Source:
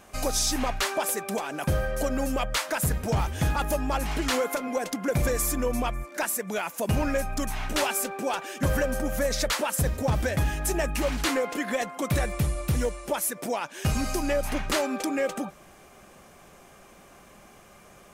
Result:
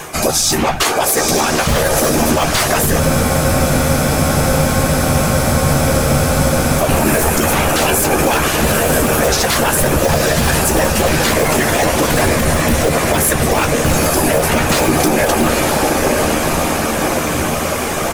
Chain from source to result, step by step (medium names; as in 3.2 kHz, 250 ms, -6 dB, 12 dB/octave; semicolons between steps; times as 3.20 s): high-pass 54 Hz 6 dB/octave; treble shelf 6.7 kHz +3 dB; hum notches 60/120/180/240 Hz; reverse; compression 6:1, threshold -41 dBFS, peak gain reduction 18.5 dB; reverse; echo that smears into a reverb 910 ms, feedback 68%, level -4 dB; in parallel at -7.5 dB: integer overflow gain 32 dB; on the sum: whisper effect; doubling 13 ms -6.5 dB; loudness maximiser +28.5 dB; spectral freeze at 3.03 s, 3.76 s; trim -3 dB